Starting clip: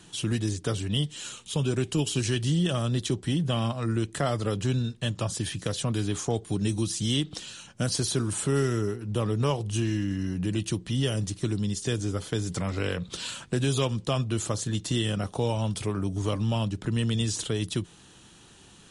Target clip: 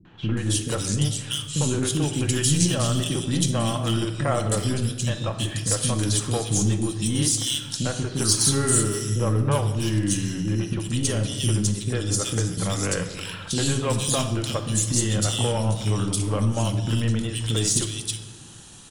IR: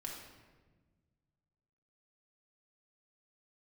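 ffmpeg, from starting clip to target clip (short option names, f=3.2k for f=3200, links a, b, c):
-filter_complex "[0:a]asoftclip=type=hard:threshold=-19dB,acrossover=split=330|2500[a][b][c];[b]adelay=50[d];[c]adelay=370[e];[a][d][e]amix=inputs=3:normalize=0,aeval=exprs='0.211*(cos(1*acos(clip(val(0)/0.211,-1,1)))-cos(1*PI/2))+0.00841*(cos(4*acos(clip(val(0)/0.211,-1,1)))-cos(4*PI/2))':c=same,crystalizer=i=1.5:c=0,asplit=2[f][g];[1:a]atrim=start_sample=2205[h];[g][h]afir=irnorm=-1:irlink=0,volume=0.5dB[i];[f][i]amix=inputs=2:normalize=0"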